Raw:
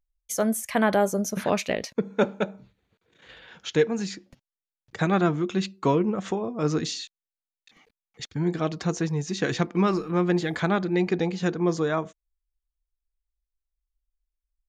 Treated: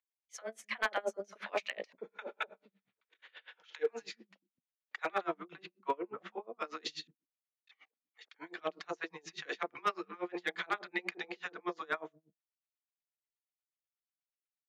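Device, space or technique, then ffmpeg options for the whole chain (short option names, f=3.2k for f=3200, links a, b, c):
helicopter radio: -filter_complex "[0:a]asettb=1/sr,asplit=3[a][b][c];[a]atrim=end=5.344[d];[b]atrim=start=5.34:end=6.57,asetpts=PTS-STARTPTS,afade=t=in:d=0.004:c=qsin,afade=t=out:st=1.226:d=0.004:c=qsin,lowpass=f=1.1k:p=1[e];[c]atrim=start=6.566[f];[d][e]acrossfade=d=0.004:c1=hsin:c2=qsin[g];[g][f]acrossfade=d=0.004:c1=qsin:c2=hsin,highpass=350,lowpass=2.7k,highpass=f=1.5k:p=1,bandreject=f=1.6k:w=25,acrossover=split=200|840[h][i][j];[i]adelay=30[k];[h]adelay=250[l];[l][k][j]amix=inputs=3:normalize=0,aeval=exprs='val(0)*pow(10,-30*(0.5-0.5*cos(2*PI*8.3*n/s))/20)':c=same,asoftclip=type=hard:threshold=-28.5dB,volume=5.5dB"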